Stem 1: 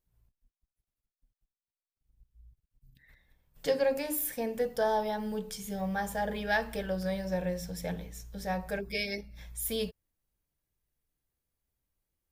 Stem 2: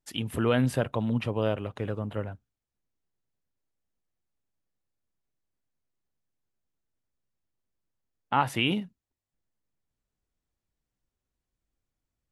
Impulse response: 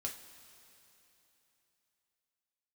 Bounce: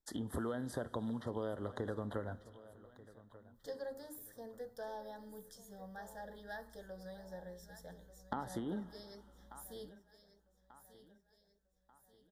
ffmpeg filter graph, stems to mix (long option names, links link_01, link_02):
-filter_complex "[0:a]volume=-15.5dB,asplit=2[link_01][link_02];[link_02]volume=-15dB[link_03];[1:a]agate=range=-8dB:threshold=-49dB:ratio=16:detection=peak,acompressor=threshold=-32dB:ratio=6,volume=1dB,asplit=3[link_04][link_05][link_06];[link_05]volume=-8.5dB[link_07];[link_06]volume=-21dB[link_08];[2:a]atrim=start_sample=2205[link_09];[link_07][link_09]afir=irnorm=-1:irlink=0[link_10];[link_03][link_08]amix=inputs=2:normalize=0,aecho=0:1:1189|2378|3567|4756|5945|7134:1|0.45|0.202|0.0911|0.041|0.0185[link_11];[link_01][link_04][link_10][link_11]amix=inputs=4:normalize=0,equalizer=frequency=130:width_type=o:width=1.2:gain=-6.5,acrossover=split=590|1500[link_12][link_13][link_14];[link_12]acompressor=threshold=-37dB:ratio=4[link_15];[link_13]acompressor=threshold=-47dB:ratio=4[link_16];[link_14]acompressor=threshold=-50dB:ratio=4[link_17];[link_15][link_16][link_17]amix=inputs=3:normalize=0,asuperstop=centerf=2500:order=8:qfactor=1.8"